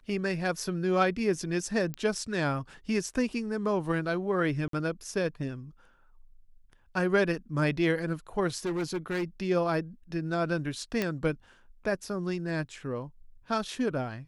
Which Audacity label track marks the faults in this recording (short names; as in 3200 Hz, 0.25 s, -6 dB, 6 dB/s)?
1.940000	1.940000	pop -20 dBFS
4.680000	4.730000	gap 53 ms
8.650000	9.240000	clipped -27 dBFS
11.020000	11.020000	pop -14 dBFS